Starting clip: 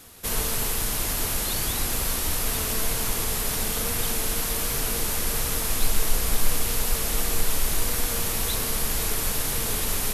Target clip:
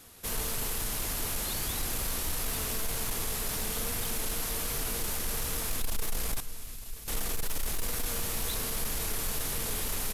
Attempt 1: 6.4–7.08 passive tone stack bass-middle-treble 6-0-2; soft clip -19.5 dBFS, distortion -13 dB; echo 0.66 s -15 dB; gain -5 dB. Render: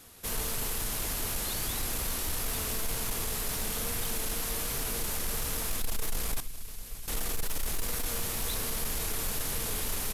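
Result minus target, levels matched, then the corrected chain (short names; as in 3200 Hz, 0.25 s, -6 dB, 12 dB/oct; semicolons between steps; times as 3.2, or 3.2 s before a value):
echo 0.281 s early
6.4–7.08 passive tone stack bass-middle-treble 6-0-2; soft clip -19.5 dBFS, distortion -13 dB; echo 0.941 s -15 dB; gain -5 dB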